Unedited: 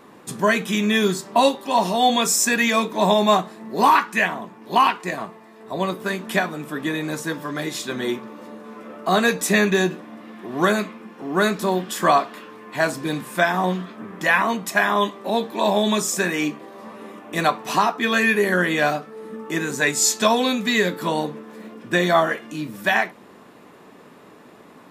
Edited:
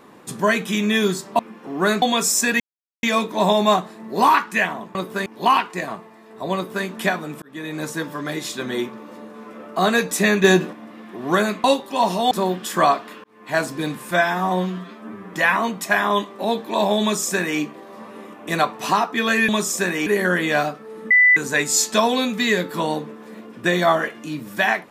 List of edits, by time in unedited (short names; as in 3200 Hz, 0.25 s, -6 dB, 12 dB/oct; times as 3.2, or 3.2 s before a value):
1.39–2.06 swap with 10.94–11.57
2.64 insert silence 0.43 s
5.85–6.16 copy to 4.56
6.72–7.14 fade in
9.74–10.03 gain +5.5 dB
12.5–12.83 fade in
13.37–14.18 stretch 1.5×
15.87–16.45 copy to 18.34
19.38–19.64 bleep 1990 Hz -9.5 dBFS